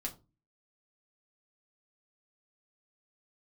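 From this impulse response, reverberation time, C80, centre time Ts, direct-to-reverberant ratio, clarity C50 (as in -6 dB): 0.30 s, 21.5 dB, 11 ms, -1.0 dB, 16.0 dB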